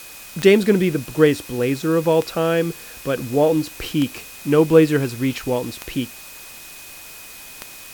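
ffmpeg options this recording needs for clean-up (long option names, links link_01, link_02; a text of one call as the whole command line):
ffmpeg -i in.wav -af "adeclick=threshold=4,bandreject=frequency=2500:width=30,afwtdn=0.011" out.wav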